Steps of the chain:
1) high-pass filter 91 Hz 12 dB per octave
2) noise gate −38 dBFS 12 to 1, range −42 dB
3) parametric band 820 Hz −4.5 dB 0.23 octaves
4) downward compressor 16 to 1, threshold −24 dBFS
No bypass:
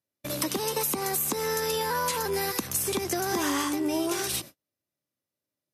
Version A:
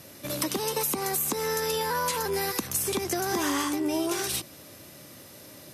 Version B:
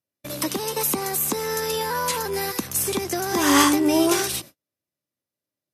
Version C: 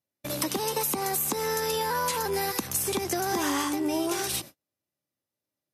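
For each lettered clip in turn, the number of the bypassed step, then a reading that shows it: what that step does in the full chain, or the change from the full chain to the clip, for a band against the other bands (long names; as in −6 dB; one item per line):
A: 2, change in momentary loudness spread +16 LU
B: 4, average gain reduction 4.0 dB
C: 3, 1 kHz band +1.5 dB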